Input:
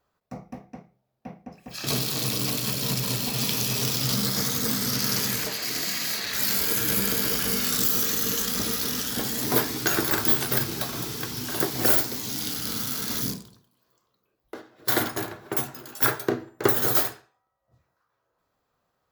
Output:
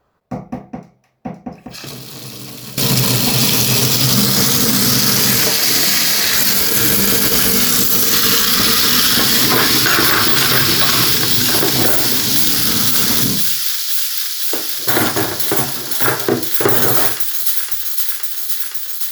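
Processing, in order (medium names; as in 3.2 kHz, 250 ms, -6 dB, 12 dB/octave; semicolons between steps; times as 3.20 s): 1.56–2.78 s: compression 8:1, threshold -41 dBFS, peak gain reduction 18.5 dB; 8.13–11.12 s: time-frequency box 1–5.6 kHz +7 dB; feedback echo behind a high-pass 515 ms, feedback 84%, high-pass 3 kHz, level -7.5 dB; loudness maximiser +14.5 dB; tape noise reduction on one side only decoder only; trim -1 dB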